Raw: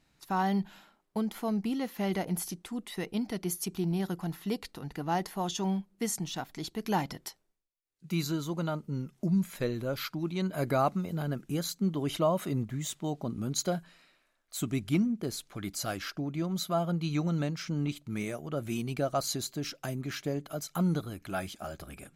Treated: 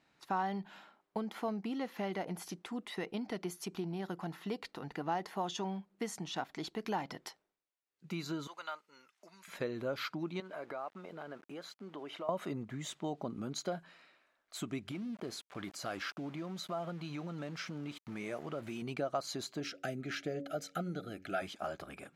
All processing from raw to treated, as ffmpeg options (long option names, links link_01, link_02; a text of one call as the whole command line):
ffmpeg -i in.wav -filter_complex "[0:a]asettb=1/sr,asplit=3[link_01][link_02][link_03];[link_01]atrim=end=8.474[link_04];[link_02]atrim=start=8.47:end=9.48,asetpts=PTS-STARTPTS,afade=type=in:duration=0.004:curve=qsin,afade=type=out:start_time=1.006:duration=0.004:curve=qsin,highpass=1400,bandreject=frequency=3200:width=30[link_05];[link_03]atrim=start=9.476[link_06];[link_04][link_05]acrossfade=duration=0.004:curve1=hsin:curve2=qsin[link_07];[link_07][link_06]acrossfade=duration=0.004:curve1=qsin:curve2=hsin,asettb=1/sr,asplit=3[link_08][link_09][link_10];[link_08]atrim=end=10.404[link_11];[link_09]atrim=start=10.4:end=12.29,asetpts=PTS-STARTPTS,afade=type=in:duration=0.004:curve=qsin,afade=type=out:start_time=1.886:duration=0.004:curve=qsin,bass=frequency=250:gain=-15,treble=frequency=4000:gain=-10,acompressor=threshold=-42dB:ratio=4:attack=3.2:release=140:knee=1:detection=peak,aeval=exprs='val(0)*gte(abs(val(0)),0.00119)':channel_layout=same[link_12];[link_10]atrim=start=12.286[link_13];[link_11][link_12]acrossfade=duration=0.004:curve1=hsin:curve2=qsin[link_14];[link_14][link_13]acrossfade=duration=0.004:curve1=qsin:curve2=hsin,asettb=1/sr,asplit=3[link_15][link_16][link_17];[link_15]atrim=end=14.914[link_18];[link_16]atrim=start=14.91:end=18.82,asetpts=PTS-STARTPTS,afade=type=in:duration=0.004:curve=qsin,afade=type=out:start_time=3.906:duration=0.004:curve=qsin,acompressor=threshold=-34dB:ratio=6:attack=3.2:release=140:knee=1:detection=peak,aeval=exprs='val(0)*gte(abs(val(0)),0.00335)':channel_layout=same[link_19];[link_17]atrim=start=18.816[link_20];[link_18][link_19]acrossfade=duration=0.004:curve1=hsin:curve2=qsin[link_21];[link_21][link_20]acrossfade=duration=0.004:curve1=qsin:curve2=hsin,asettb=1/sr,asplit=3[link_22][link_23][link_24];[link_22]atrim=end=19.604[link_25];[link_23]atrim=start=19.6:end=21.42,asetpts=PTS-STARTPTS,afade=type=in:duration=0.004:curve=qsin,afade=type=out:start_time=1.816:duration=0.004:curve=qsin,asuperstop=centerf=990:order=12:qfactor=2.3,bandreject=frequency=93.4:width_type=h:width=4,bandreject=frequency=186.8:width_type=h:width=4,bandreject=frequency=280.2:width_type=h:width=4,bandreject=frequency=373.6:width_type=h:width=4,bandreject=frequency=467:width_type=h:width=4,bandreject=frequency=560.4:width_type=h:width=4[link_26];[link_24]atrim=start=21.416[link_27];[link_25][link_26]acrossfade=duration=0.004:curve1=hsin:curve2=qsin[link_28];[link_28][link_27]acrossfade=duration=0.004:curve1=qsin:curve2=hsin,acompressor=threshold=-32dB:ratio=6,highpass=frequency=470:poles=1,aemphasis=mode=reproduction:type=75fm,volume=3dB" out.wav